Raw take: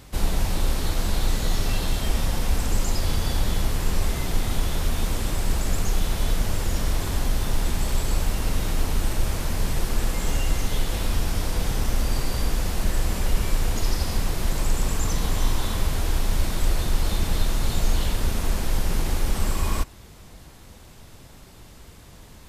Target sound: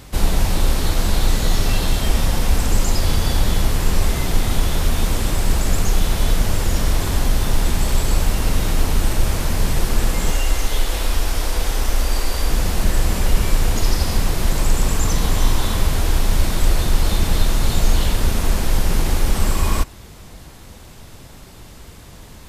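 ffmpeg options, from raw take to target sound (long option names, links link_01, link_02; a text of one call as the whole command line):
ffmpeg -i in.wav -filter_complex "[0:a]asettb=1/sr,asplit=3[link_01][link_02][link_03];[link_01]atrim=end=10.314[link_04];[link_02]atrim=start=10.31:end=12.5,asetpts=PTS-STARTPTS,afade=type=in:duration=0.004:curve=qsin,afade=type=out:start_time=2.186:duration=0.004:curve=qsin,equalizer=frequency=140:width=1.1:gain=-14.5[link_05];[link_03]atrim=start=12.496[link_06];[link_04][link_05]acrossfade=duration=0.004:curve1=hsin:curve2=qsin[link_07];[link_07][link_06]acrossfade=duration=0.004:curve1=qsin:curve2=hsin,volume=6dB" out.wav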